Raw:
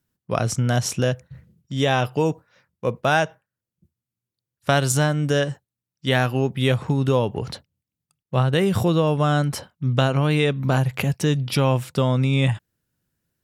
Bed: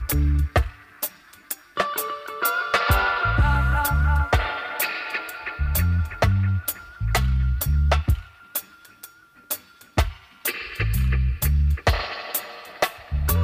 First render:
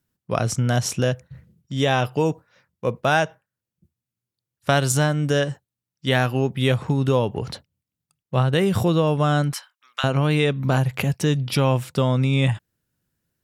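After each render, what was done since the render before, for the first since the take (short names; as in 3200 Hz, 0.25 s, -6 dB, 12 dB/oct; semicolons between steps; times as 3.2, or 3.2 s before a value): 9.53–10.04 HPF 1100 Hz 24 dB/oct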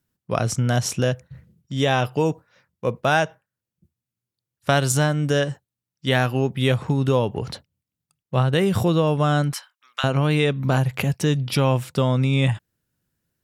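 nothing audible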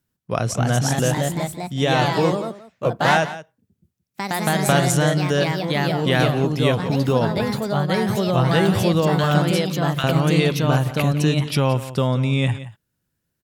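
echoes that change speed 0.293 s, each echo +2 st, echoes 3; echo 0.174 s -15 dB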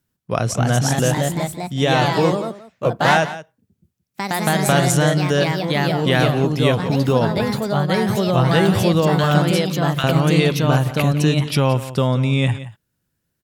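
gain +2 dB; limiter -2 dBFS, peak gain reduction 1.5 dB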